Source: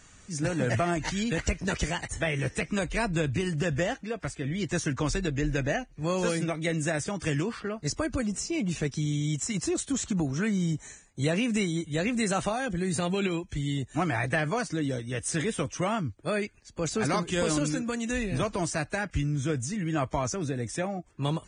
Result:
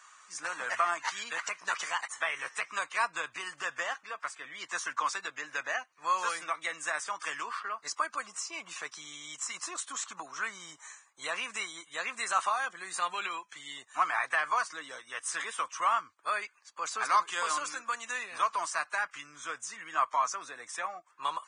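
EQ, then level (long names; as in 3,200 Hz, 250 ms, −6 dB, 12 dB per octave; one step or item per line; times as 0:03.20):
high-pass with resonance 1,100 Hz, resonance Q 4.9
−3.5 dB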